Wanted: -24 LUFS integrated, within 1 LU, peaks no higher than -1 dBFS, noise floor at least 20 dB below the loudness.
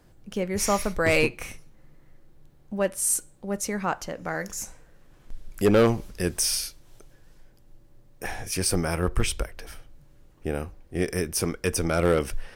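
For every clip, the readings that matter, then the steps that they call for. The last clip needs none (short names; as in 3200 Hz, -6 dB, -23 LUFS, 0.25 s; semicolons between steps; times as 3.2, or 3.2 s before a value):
clipped 0.3%; flat tops at -13.0 dBFS; loudness -26.5 LUFS; peak -13.0 dBFS; loudness target -24.0 LUFS
-> clip repair -13 dBFS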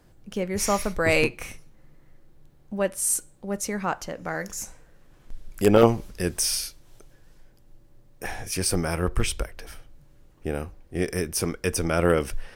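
clipped 0.0%; loudness -25.5 LUFS; peak -4.0 dBFS; loudness target -24.0 LUFS
-> gain +1.5 dB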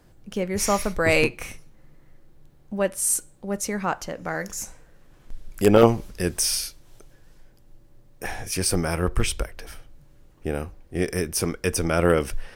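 loudness -24.0 LUFS; peak -2.5 dBFS; noise floor -54 dBFS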